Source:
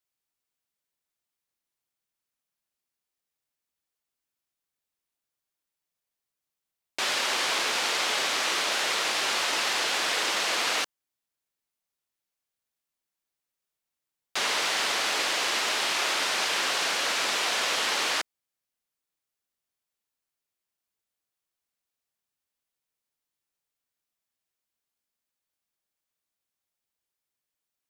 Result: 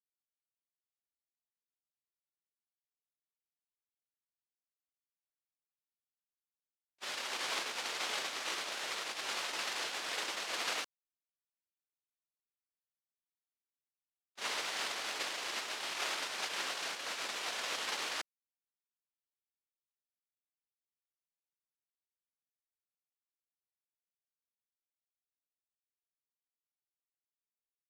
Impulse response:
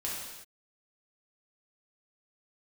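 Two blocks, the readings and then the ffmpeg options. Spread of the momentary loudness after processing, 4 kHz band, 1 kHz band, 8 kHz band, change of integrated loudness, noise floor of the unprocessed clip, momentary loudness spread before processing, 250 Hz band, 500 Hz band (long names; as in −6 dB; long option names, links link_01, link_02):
3 LU, −12.0 dB, −11.5 dB, −12.0 dB, −11.5 dB, below −85 dBFS, 3 LU, −12.0 dB, −12.0 dB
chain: -af "agate=range=-51dB:threshold=-24dB:ratio=16:detection=peak,volume=3dB"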